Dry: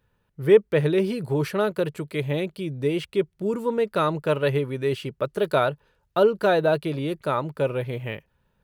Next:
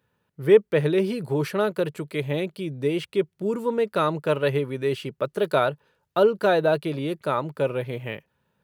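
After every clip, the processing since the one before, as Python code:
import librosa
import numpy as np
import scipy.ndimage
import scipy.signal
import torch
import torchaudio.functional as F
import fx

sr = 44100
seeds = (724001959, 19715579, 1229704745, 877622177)

y = scipy.signal.sosfilt(scipy.signal.butter(2, 120.0, 'highpass', fs=sr, output='sos'), x)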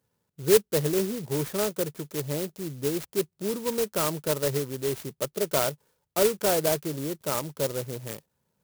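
y = fx.clock_jitter(x, sr, seeds[0], jitter_ms=0.13)
y = y * 10.0 ** (-4.0 / 20.0)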